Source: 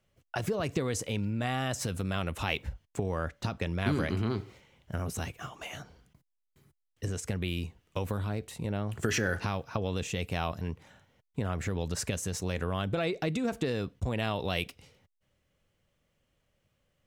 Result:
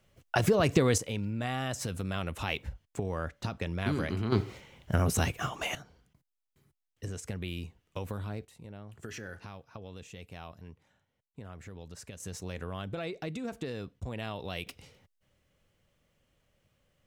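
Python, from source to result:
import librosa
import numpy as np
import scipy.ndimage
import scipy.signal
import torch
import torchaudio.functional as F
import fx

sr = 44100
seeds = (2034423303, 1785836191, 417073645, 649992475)

y = fx.gain(x, sr, db=fx.steps((0.0, 6.5), (0.98, -2.0), (4.32, 7.5), (5.75, -4.5), (8.45, -13.5), (12.2, -6.5), (14.67, 2.5)))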